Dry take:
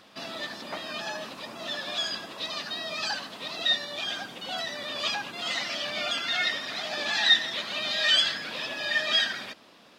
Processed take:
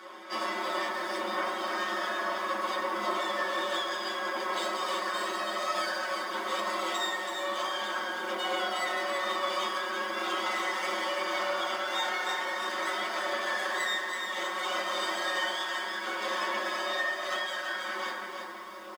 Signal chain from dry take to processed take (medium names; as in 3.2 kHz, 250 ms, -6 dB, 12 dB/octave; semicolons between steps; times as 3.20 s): comb filter that takes the minimum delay 0.62 ms; steep high-pass 220 Hz 72 dB/octave; peaking EQ 740 Hz +12.5 dB 2.1 oct; compression 12:1, threshold -34 dBFS, peak gain reduction 21 dB; small resonant body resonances 1/2.3 kHz, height 11 dB, ringing for 25 ms; granular stretch 1.9×, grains 23 ms; delay 191 ms -19.5 dB; reverberation RT60 1.2 s, pre-delay 4 ms, DRR -4 dB; bit-crushed delay 330 ms, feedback 35%, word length 9-bit, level -5.5 dB